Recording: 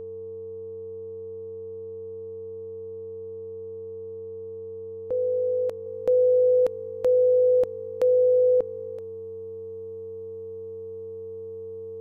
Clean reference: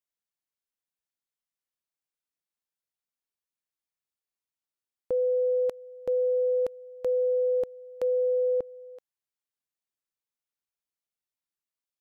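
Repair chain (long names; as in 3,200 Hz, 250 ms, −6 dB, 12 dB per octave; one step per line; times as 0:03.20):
hum removal 97.4 Hz, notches 12
notch filter 450 Hz, Q 30
level 0 dB, from 0:05.86 −6 dB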